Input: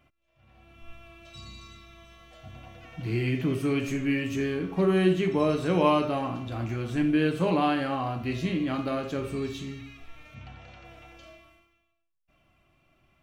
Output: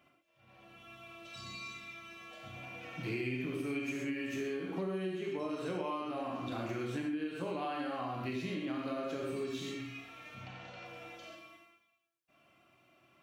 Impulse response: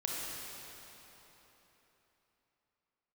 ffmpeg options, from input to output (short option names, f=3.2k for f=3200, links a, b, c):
-filter_complex "[0:a]highpass=150,bass=f=250:g=-3,treble=f=4k:g=0[a];[1:a]atrim=start_sample=2205,atrim=end_sample=6174[b];[a][b]afir=irnorm=-1:irlink=0,acompressor=threshold=-34dB:ratio=12,asettb=1/sr,asplit=3[c][d][e];[c]atrim=end=1.534[f];[d]atrim=start=1.53:end=3.92,asetpts=PTS-STARTPTS,afade=t=in:d=0.004:c=qsin,afade=t=out:st=2.386:d=0.004:c=qsin,equalizer=f=2.4k:w=7.5:g=7.5[g];[e]atrim=start=3.916[h];[f][g]acrossfade=d=0.004:c1=hsin:c2=qsin[i];[i][h]acrossfade=d=0.004:c1=qsin:c2=hsin"